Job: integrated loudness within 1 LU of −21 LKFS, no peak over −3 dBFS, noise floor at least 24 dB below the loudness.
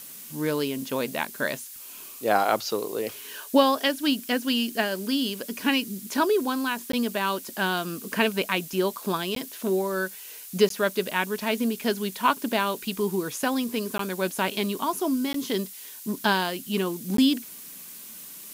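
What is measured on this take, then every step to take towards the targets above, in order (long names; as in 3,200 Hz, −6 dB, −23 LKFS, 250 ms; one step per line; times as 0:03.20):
number of dropouts 6; longest dropout 13 ms; background noise floor −42 dBFS; target noise floor −51 dBFS; integrated loudness −26.5 LKFS; sample peak −7.5 dBFS; target loudness −21.0 LKFS
→ repair the gap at 0:06.92/0:09.35/0:10.69/0:13.98/0:15.33/0:17.17, 13 ms
noise reduction from a noise print 9 dB
level +5.5 dB
brickwall limiter −3 dBFS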